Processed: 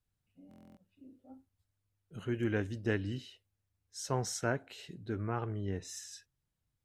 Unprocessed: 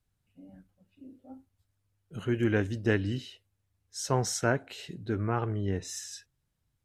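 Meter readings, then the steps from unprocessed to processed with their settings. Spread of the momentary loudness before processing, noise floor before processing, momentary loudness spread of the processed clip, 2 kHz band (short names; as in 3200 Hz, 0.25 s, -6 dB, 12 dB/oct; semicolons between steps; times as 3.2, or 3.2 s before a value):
16 LU, -79 dBFS, 16 LU, -6.0 dB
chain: stuck buffer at 0.49, samples 1024, times 11; gain -6 dB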